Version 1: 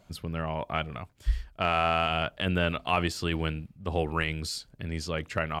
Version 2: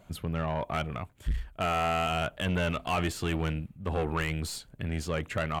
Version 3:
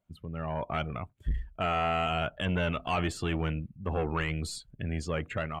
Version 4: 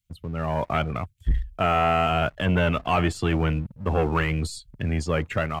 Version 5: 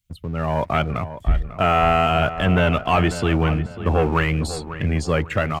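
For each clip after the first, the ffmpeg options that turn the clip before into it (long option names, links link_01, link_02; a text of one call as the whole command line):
ffmpeg -i in.wav -af "aeval=exprs='(tanh(22.4*val(0)+0.2)-tanh(0.2))/22.4':channel_layout=same,equalizer=frequency=5000:width=2.1:gain=-9.5,volume=3.5dB" out.wav
ffmpeg -i in.wav -af "dynaudnorm=framelen=180:gausssize=5:maxgain=8dB,afftdn=noise_reduction=17:noise_floor=-38,volume=-8.5dB" out.wav
ffmpeg -i in.wav -filter_complex "[0:a]acrossover=split=120|2400[link_01][link_02][link_03];[link_02]aeval=exprs='sgn(val(0))*max(abs(val(0))-0.00178,0)':channel_layout=same[link_04];[link_03]alimiter=level_in=12dB:limit=-24dB:level=0:latency=1:release=260,volume=-12dB[link_05];[link_01][link_04][link_05]amix=inputs=3:normalize=0,volume=8dB" out.wav
ffmpeg -i in.wav -filter_complex "[0:a]asplit=2[link_01][link_02];[link_02]adelay=546,lowpass=frequency=2600:poles=1,volume=-12dB,asplit=2[link_03][link_04];[link_04]adelay=546,lowpass=frequency=2600:poles=1,volume=0.37,asplit=2[link_05][link_06];[link_06]adelay=546,lowpass=frequency=2600:poles=1,volume=0.37,asplit=2[link_07][link_08];[link_08]adelay=546,lowpass=frequency=2600:poles=1,volume=0.37[link_09];[link_01][link_03][link_05][link_07][link_09]amix=inputs=5:normalize=0,volume=4dB" out.wav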